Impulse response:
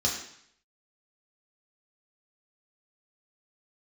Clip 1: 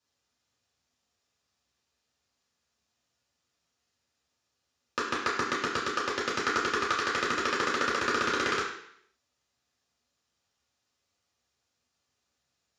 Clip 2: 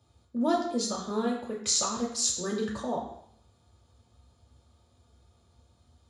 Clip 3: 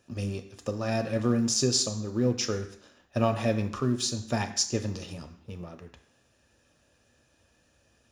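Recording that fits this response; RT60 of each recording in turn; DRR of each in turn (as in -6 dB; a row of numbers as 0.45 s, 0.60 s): 2; 0.65 s, 0.65 s, 0.65 s; -8.0 dB, -3.0 dB, 6.5 dB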